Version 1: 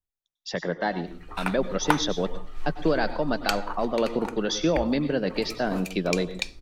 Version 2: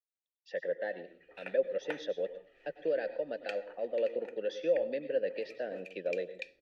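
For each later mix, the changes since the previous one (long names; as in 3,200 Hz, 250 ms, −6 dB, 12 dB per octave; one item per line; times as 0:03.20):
master: add formant filter e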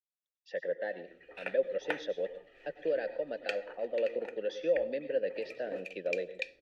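background +5.5 dB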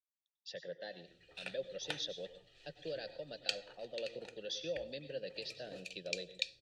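master: add octave-band graphic EQ 125/250/500/1,000/2,000/4,000/8,000 Hz +11/−10/−9/−6/−12/+12/+9 dB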